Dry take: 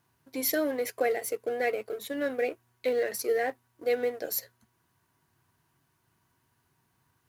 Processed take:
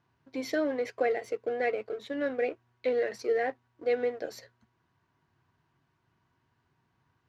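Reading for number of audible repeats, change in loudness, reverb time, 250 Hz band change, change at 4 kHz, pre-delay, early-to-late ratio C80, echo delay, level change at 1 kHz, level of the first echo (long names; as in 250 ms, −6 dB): no echo audible, −1.0 dB, no reverb audible, 0.0 dB, −5.5 dB, no reverb audible, no reverb audible, no echo audible, −0.5 dB, no echo audible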